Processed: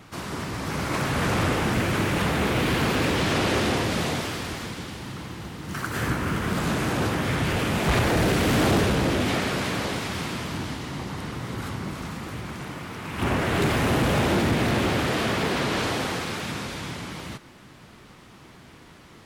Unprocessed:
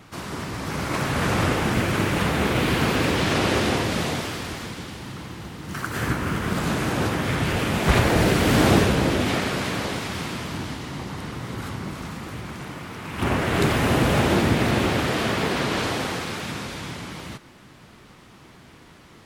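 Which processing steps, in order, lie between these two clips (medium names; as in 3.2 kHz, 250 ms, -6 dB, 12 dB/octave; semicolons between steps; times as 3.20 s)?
saturation -15.5 dBFS, distortion -15 dB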